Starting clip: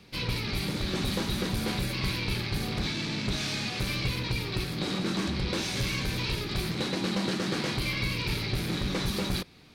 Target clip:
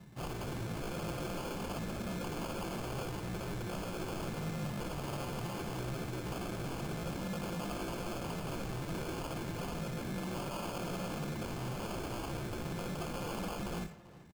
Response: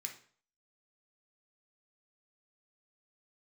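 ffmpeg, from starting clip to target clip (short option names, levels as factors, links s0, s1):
-filter_complex "[0:a]highpass=f=40:w=0.5412,highpass=f=40:w=1.3066,bass=f=250:g=9,treble=f=4000:g=4,tremolo=f=1.1:d=0.34,equalizer=f=1200:t=o:w=1.7:g=-15,aeval=exprs='0.0299*(abs(mod(val(0)/0.0299+3,4)-2)-1)':c=same,atempo=0.68,aecho=1:1:5.8:0.36,acrusher=samples=23:mix=1:aa=0.000001,asplit=2[s0][s1];[s1]adelay=390,highpass=300,lowpass=3400,asoftclip=type=hard:threshold=0.01,volume=0.251[s2];[s0][s2]amix=inputs=2:normalize=0,asplit=2[s3][s4];[1:a]atrim=start_sample=2205,adelay=58[s5];[s4][s5]afir=irnorm=-1:irlink=0,volume=0.473[s6];[s3][s6]amix=inputs=2:normalize=0,volume=0.631"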